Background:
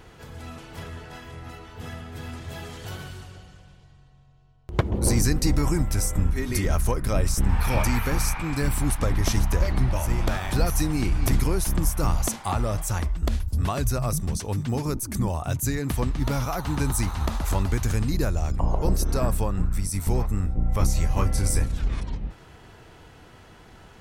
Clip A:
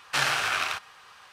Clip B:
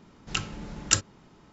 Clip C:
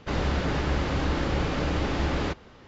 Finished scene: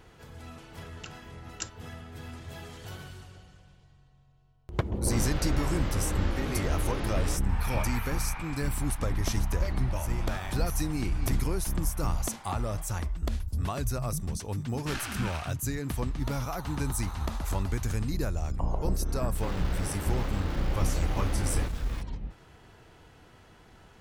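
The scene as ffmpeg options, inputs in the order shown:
ffmpeg -i bed.wav -i cue0.wav -i cue1.wav -i cue2.wav -filter_complex "[3:a]asplit=2[link_01][link_02];[0:a]volume=-6dB[link_03];[link_01]flanger=delay=16.5:depth=4.6:speed=0.9[link_04];[link_02]aeval=exprs='val(0)+0.5*0.0251*sgn(val(0))':channel_layout=same[link_05];[2:a]atrim=end=1.52,asetpts=PTS-STARTPTS,volume=-15dB,afade=type=in:duration=0.004:curve=hsin,afade=type=out:start_time=1.516:duration=0.004:curve=hsin,adelay=690[link_06];[link_04]atrim=end=2.67,asetpts=PTS-STARTPTS,volume=-4dB,afade=type=in:duration=0.004:curve=hsin,afade=type=out:start_time=2.666:duration=0.004:curve=hsin,adelay=5040[link_07];[1:a]atrim=end=1.32,asetpts=PTS-STARTPTS,volume=-12.5dB,afade=type=in:duration=0.004:curve=hsin,afade=type=out:start_time=1.316:duration=0.004:curve=hsin,adelay=14730[link_08];[link_05]atrim=end=2.67,asetpts=PTS-STARTPTS,volume=-10.5dB,afade=type=in:duration=0.004:curve=hsin,afade=type=out:start_time=2.666:duration=0.004:curve=hsin,adelay=19350[link_09];[link_03][link_06][link_07][link_08][link_09]amix=inputs=5:normalize=0" out.wav

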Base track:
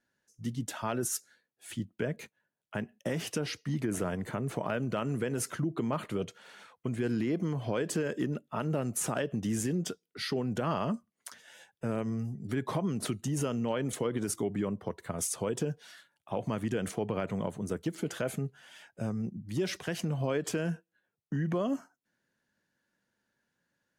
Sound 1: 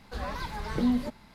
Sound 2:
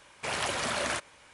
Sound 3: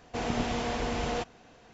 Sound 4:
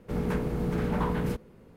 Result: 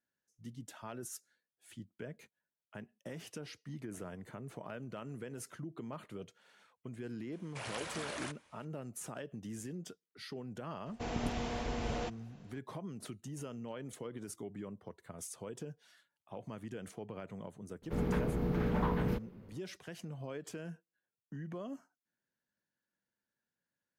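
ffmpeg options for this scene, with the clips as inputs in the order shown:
ffmpeg -i bed.wav -i cue0.wav -i cue1.wav -i cue2.wav -i cue3.wav -filter_complex "[0:a]volume=-12.5dB[link_01];[2:a]aresample=32000,aresample=44100[link_02];[3:a]lowshelf=frequency=230:gain=5[link_03];[4:a]equalizer=frequency=8600:width_type=o:width=0.79:gain=-12.5[link_04];[link_02]atrim=end=1.33,asetpts=PTS-STARTPTS,volume=-11.5dB,afade=type=in:duration=0.004:curve=hsin,afade=type=out:start_time=1.326:duration=0.004:curve=hsin,adelay=7320[link_05];[link_03]atrim=end=1.73,asetpts=PTS-STARTPTS,volume=-8dB,afade=type=in:duration=0.004:curve=hsin,afade=type=out:start_time=1.726:duration=0.004:curve=hsin,adelay=10860[link_06];[link_04]atrim=end=1.76,asetpts=PTS-STARTPTS,volume=-4dB,afade=type=in:duration=0.004:curve=hsin,afade=type=out:start_time=1.756:duration=0.004:curve=hsin,adelay=17820[link_07];[link_01][link_05][link_06][link_07]amix=inputs=4:normalize=0" out.wav

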